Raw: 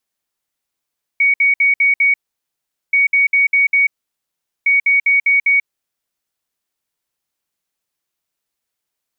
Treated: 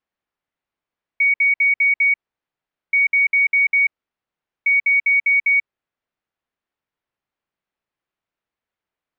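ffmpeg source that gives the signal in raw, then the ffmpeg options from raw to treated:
-f lavfi -i "aevalsrc='0.335*sin(2*PI*2240*t)*clip(min(mod(mod(t,1.73),0.2),0.14-mod(mod(t,1.73),0.2))/0.005,0,1)*lt(mod(t,1.73),1)':duration=5.19:sample_rate=44100"
-af "lowpass=2300"

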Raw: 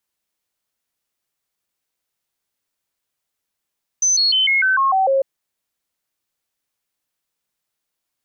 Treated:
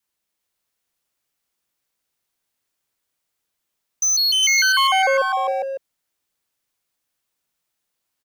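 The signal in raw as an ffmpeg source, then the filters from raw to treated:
-f lavfi -i "aevalsrc='0.224*clip(min(mod(t,0.15),0.15-mod(t,0.15))/0.005,0,1)*sin(2*PI*6120*pow(2,-floor(t/0.15)/2)*mod(t,0.15))':duration=1.2:sample_rate=44100"
-filter_complex "[0:a]adynamicequalizer=threshold=0.0398:dfrequency=550:dqfactor=1.9:tfrequency=550:tqfactor=1.9:attack=5:release=100:ratio=0.375:range=1.5:mode=cutabove:tftype=bell,asoftclip=type=hard:threshold=-16.5dB,asplit=2[link_01][link_02];[link_02]aecho=0:1:298|405|421|554:0.251|0.531|0.106|0.398[link_03];[link_01][link_03]amix=inputs=2:normalize=0"

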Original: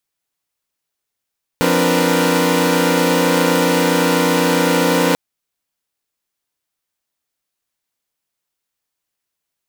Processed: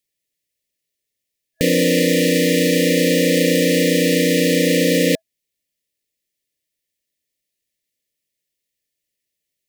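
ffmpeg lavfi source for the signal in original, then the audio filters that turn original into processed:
-f lavfi -i "aevalsrc='0.141*((2*mod(174.61*t,1)-1)+(2*mod(261.63*t,1)-1)+(2*mod(293.66*t,1)-1)+(2*mod(466.16*t,1)-1)+(2*mod(493.88*t,1)-1))':duration=3.54:sample_rate=44100"
-af "afftfilt=real='re*(1-between(b*sr/4096,650,1700))':imag='im*(1-between(b*sr/4096,650,1700))':win_size=4096:overlap=0.75"

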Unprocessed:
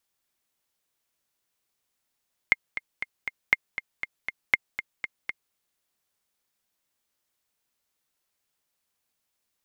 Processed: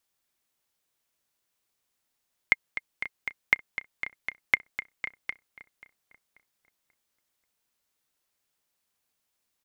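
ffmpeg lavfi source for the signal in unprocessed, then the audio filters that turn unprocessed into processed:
-f lavfi -i "aevalsrc='pow(10,(-4.5-12*gte(mod(t,4*60/238),60/238))/20)*sin(2*PI*2120*mod(t,60/238))*exp(-6.91*mod(t,60/238)/0.03)':duration=3.02:sample_rate=44100"
-filter_complex "[0:a]asplit=2[link_01][link_02];[link_02]adelay=536,lowpass=frequency=2000:poles=1,volume=-15dB,asplit=2[link_03][link_04];[link_04]adelay=536,lowpass=frequency=2000:poles=1,volume=0.41,asplit=2[link_05][link_06];[link_06]adelay=536,lowpass=frequency=2000:poles=1,volume=0.41,asplit=2[link_07][link_08];[link_08]adelay=536,lowpass=frequency=2000:poles=1,volume=0.41[link_09];[link_01][link_03][link_05][link_07][link_09]amix=inputs=5:normalize=0"

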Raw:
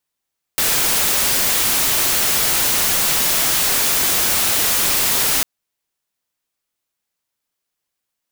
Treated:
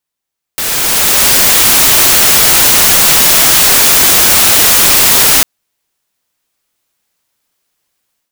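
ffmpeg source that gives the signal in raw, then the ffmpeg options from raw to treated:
-f lavfi -i "anoisesrc=color=white:amplitude=0.245:duration=4.85:sample_rate=44100:seed=1"
-af "dynaudnorm=framelen=630:gausssize=3:maxgain=13dB"

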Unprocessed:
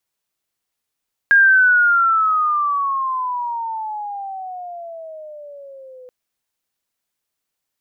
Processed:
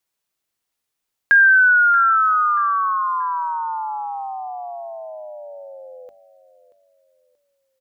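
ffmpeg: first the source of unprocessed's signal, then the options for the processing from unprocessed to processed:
-f lavfi -i "aevalsrc='pow(10,(-7.5-29.5*t/4.78)/20)*sin(2*PI*1630*4.78/(-20.5*log(2)/12)*(exp(-20.5*log(2)/12*t/4.78)-1))':duration=4.78:sample_rate=44100"
-af "bandreject=frequency=50:width_type=h:width=6,bandreject=frequency=100:width_type=h:width=6,bandreject=frequency=150:width_type=h:width=6,bandreject=frequency=200:width_type=h:width=6,bandreject=frequency=250:width_type=h:width=6,aecho=1:1:631|1262|1893:0.168|0.0604|0.0218"

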